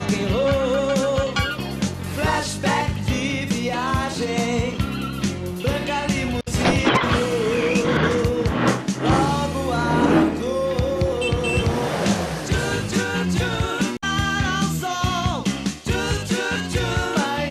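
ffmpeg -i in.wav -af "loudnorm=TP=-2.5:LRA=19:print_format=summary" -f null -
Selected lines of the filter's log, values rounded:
Input Integrated:    -21.8 LUFS
Input True Peak:      -8.1 dBTP
Input LRA:             2.5 LU
Input Threshold:     -31.8 LUFS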